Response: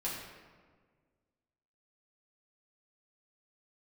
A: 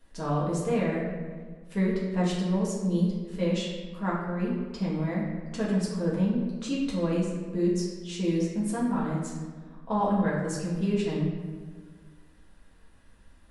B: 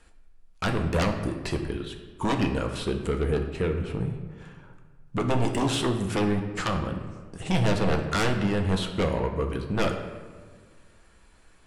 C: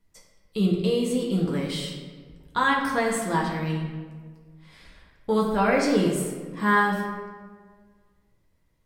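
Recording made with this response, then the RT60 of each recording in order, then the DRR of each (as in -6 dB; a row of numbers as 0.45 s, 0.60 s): A; 1.6 s, 1.6 s, 1.6 s; -7.0 dB, 3.5 dB, -3.0 dB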